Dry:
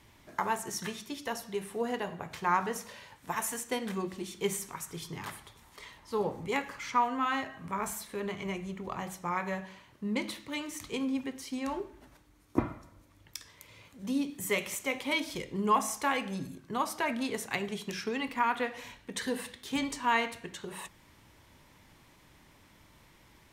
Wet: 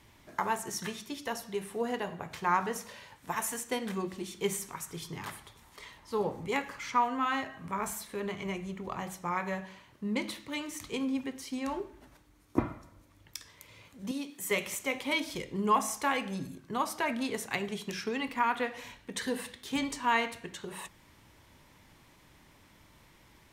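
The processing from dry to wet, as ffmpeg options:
-filter_complex "[0:a]asettb=1/sr,asplit=3[a][b][c];[a]atrim=end=14.114[d];[b]atrim=start=14.11:end=14.51,asetpts=PTS-STARTPTS,afade=t=in:d=0.004:c=qsin,afade=t=out:st=0.396:d=0.004:c=qsin,highpass=f=560:p=1[e];[c]atrim=start=14.506[f];[d][e]acrossfade=d=0.004:c1=hsin:c2=qsin[g];[g][f]acrossfade=d=0.004:c1=qsin:c2=hsin"

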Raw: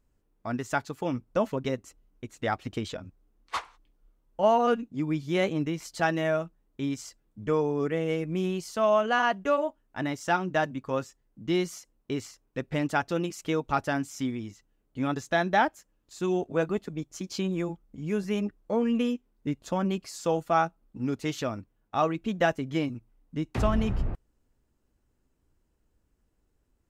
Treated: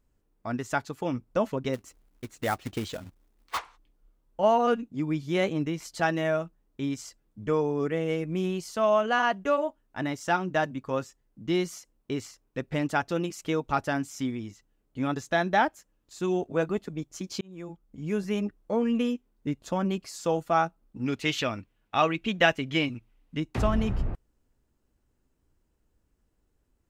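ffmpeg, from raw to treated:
-filter_complex "[0:a]asplit=3[a][b][c];[a]afade=t=out:st=1.73:d=0.02[d];[b]acrusher=bits=3:mode=log:mix=0:aa=0.000001,afade=t=in:st=1.73:d=0.02,afade=t=out:st=3.57:d=0.02[e];[c]afade=t=in:st=3.57:d=0.02[f];[d][e][f]amix=inputs=3:normalize=0,asettb=1/sr,asplit=3[g][h][i];[g]atrim=end=21.064[j];[h]atrim=start=21.06:end=23.4,asetpts=PTS-STARTPTS,afade=t=in:d=0.004:c=qsin,afade=t=out:st=2.336:d=0.004:c=qsin,equalizer=f=2.7k:w=0.94:g=11.5[k];[i]atrim=start=23.396[l];[j][k]acrossfade=d=0.004:c1=hsin:c2=qsin[m];[m][l]acrossfade=d=0.004:c1=qsin:c2=hsin,asplit=2[n][o];[n]atrim=end=17.41,asetpts=PTS-STARTPTS,afade=t=out:st=17.406:d=0.004:c=hsin[p];[o]atrim=start=17.41,asetpts=PTS-STARTPTS,afade=t=in:d=0.64[q];[p][q]concat=n=2:v=0:a=1"

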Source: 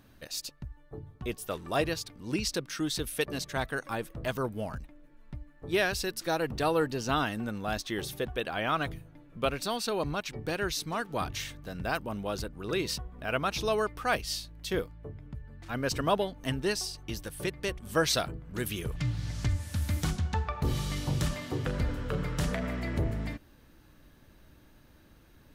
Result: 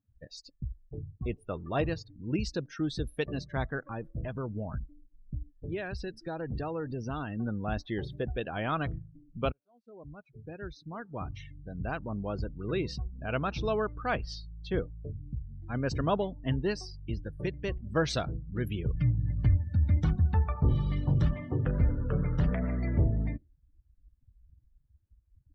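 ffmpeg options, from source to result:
-filter_complex "[0:a]asettb=1/sr,asplit=3[a][b][c];[a]atrim=end=3.854[d];[b]atrim=start=3.85:end=7.39,asetpts=PTS-STARTPTS,afade=t=in:d=0.004:c=qsin,afade=t=out:st=3.536:d=0.004:c=qsin,acompressor=threshold=-33dB:ratio=2.5:attack=3.2:release=140:knee=1:detection=peak[e];[c]atrim=start=7.386[f];[d][e]acrossfade=d=0.004:c1=hsin:c2=qsin[g];[g][f]acrossfade=d=0.004:c1=qsin:c2=hsin,asplit=2[h][i];[h]atrim=end=9.52,asetpts=PTS-STARTPTS,afade=t=out:st=9.516:d=0.004:c=hsin[j];[i]atrim=start=9.52,asetpts=PTS-STARTPTS,afade=t=in:d=2.98[k];[j][k]concat=n=2:v=0:a=1,aemphasis=mode=reproduction:type=cd,afftdn=nr=34:nf=-41,equalizer=f=74:w=0.36:g=8.5,volume=-3dB"

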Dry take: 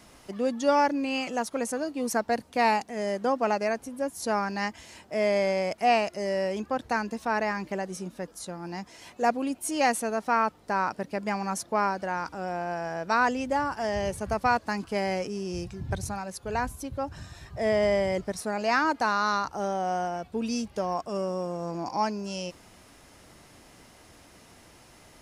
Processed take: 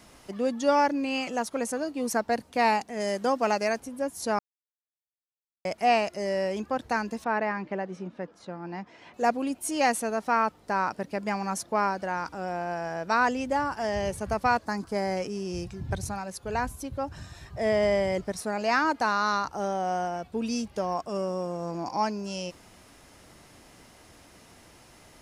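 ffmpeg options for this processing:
-filter_complex "[0:a]asettb=1/sr,asplit=3[a][b][c];[a]atrim=end=3.004[d];[b]atrim=start=3:end=3.8,asetpts=PTS-STARTPTS,afade=t=in:d=0.004:c=qsin,afade=t=out:st=0.796:d=0.004:c=qsin,highshelf=f=3.3k:g=8[e];[c]atrim=start=3.796[f];[d][e]acrossfade=d=0.004:c1=hsin:c2=qsin[g];[g][f]acrossfade=d=0.004:c1=qsin:c2=hsin,asettb=1/sr,asplit=3[h][i][j];[h]atrim=end=7.244[k];[i]atrim=start=7.24:end=9.14,asetpts=PTS-STARTPTS,afade=t=in:d=0.004:c=qsin,afade=t=out:st=1.896:d=0.004:c=qsin,highpass=120,lowpass=2.7k[l];[j]atrim=start=9.136[m];[k][l]acrossfade=d=0.004:c1=hsin:c2=qsin[n];[n][m]acrossfade=d=0.004:c1=qsin:c2=hsin,asettb=1/sr,asplit=3[o][p][q];[o]atrim=end=14.654[r];[p]atrim=start=14.65:end=15.17,asetpts=PTS-STARTPTS,afade=t=in:d=0.004:c=qsin,afade=t=out:st=0.516:d=0.004:c=qsin,equalizer=f=2.8k:w=2.5:g=-12.5[s];[q]atrim=start=15.166[t];[r][s]acrossfade=d=0.004:c1=hsin:c2=qsin[u];[u][t]acrossfade=d=0.004:c1=qsin:c2=hsin,asplit=3[v][w][x];[v]atrim=end=4.39,asetpts=PTS-STARTPTS,afade=t=out:st=4.386:d=0.004:c=hsin[y];[w]atrim=start=4.39:end=5.65,asetpts=PTS-STARTPTS,volume=0[z];[x]atrim=start=5.65,asetpts=PTS-STARTPTS,afade=t=in:d=0.004:c=hsin[aa];[y][z][aa]concat=n=3:v=0:a=1"

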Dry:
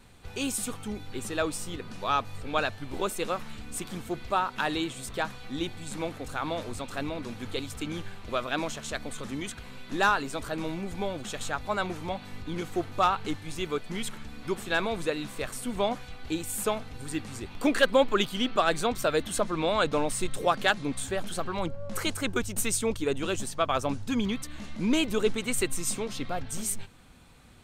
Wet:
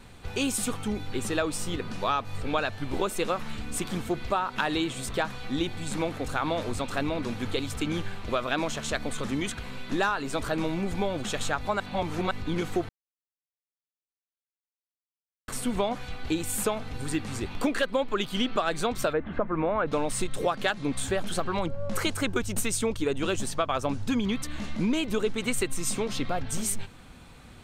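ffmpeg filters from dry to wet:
-filter_complex "[0:a]asplit=3[a][b][c];[a]afade=t=out:st=19.12:d=0.02[d];[b]lowpass=f=2k:w=0.5412,lowpass=f=2k:w=1.3066,afade=t=in:st=19.12:d=0.02,afade=t=out:st=19.86:d=0.02[e];[c]afade=t=in:st=19.86:d=0.02[f];[d][e][f]amix=inputs=3:normalize=0,asplit=5[g][h][i][j][k];[g]atrim=end=11.802[l];[h]atrim=start=11.798:end=12.312,asetpts=PTS-STARTPTS,areverse[m];[i]atrim=start=12.308:end=12.89,asetpts=PTS-STARTPTS,afade=t=out:st=0.578:d=0.004:c=hsin[n];[j]atrim=start=12.89:end=15.48,asetpts=PTS-STARTPTS,volume=0[o];[k]atrim=start=15.48,asetpts=PTS-STARTPTS,afade=t=in:d=0.004:c=hsin[p];[l][m]acrossfade=d=0.004:c1=hsin:c2=hsin[q];[n][o][p]concat=n=3:v=0:a=1[r];[q][r]acrossfade=d=0.004:c1=hsin:c2=hsin,highshelf=f=6.5k:g=-5,acompressor=threshold=-29dB:ratio=6,volume=6dB"

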